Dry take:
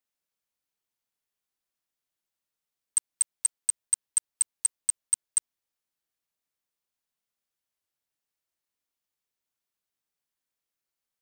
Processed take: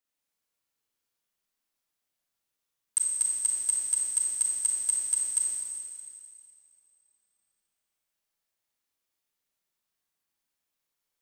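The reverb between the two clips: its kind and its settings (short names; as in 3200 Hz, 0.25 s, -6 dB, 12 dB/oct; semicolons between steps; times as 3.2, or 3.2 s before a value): Schroeder reverb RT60 2.3 s, combs from 28 ms, DRR -3.5 dB; gain -1.5 dB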